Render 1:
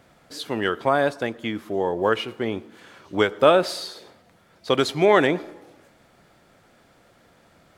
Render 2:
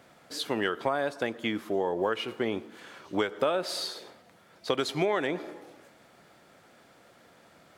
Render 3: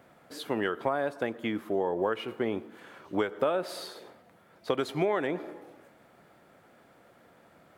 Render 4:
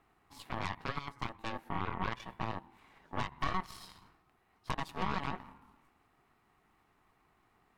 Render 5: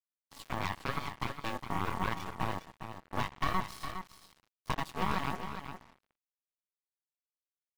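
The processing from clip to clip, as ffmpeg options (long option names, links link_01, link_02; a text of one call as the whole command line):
ffmpeg -i in.wav -af "highpass=frequency=190:poles=1,acompressor=threshold=-24dB:ratio=6" out.wav
ffmpeg -i in.wav -af "equalizer=frequency=5400:width_type=o:width=2:gain=-9.5" out.wav
ffmpeg -i in.wav -af "aeval=exprs='val(0)*sin(2*PI*560*n/s)':channel_layout=same,aeval=exprs='0.224*(cos(1*acos(clip(val(0)/0.224,-1,1)))-cos(1*PI/2))+0.0631*(cos(8*acos(clip(val(0)/0.224,-1,1)))-cos(8*PI/2))':channel_layout=same,volume=-9dB" out.wav
ffmpeg -i in.wav -filter_complex "[0:a]acrusher=bits=7:mix=0:aa=0.5,asplit=2[link_01][link_02];[link_02]aecho=0:1:410:0.355[link_03];[link_01][link_03]amix=inputs=2:normalize=0,volume=2.5dB" out.wav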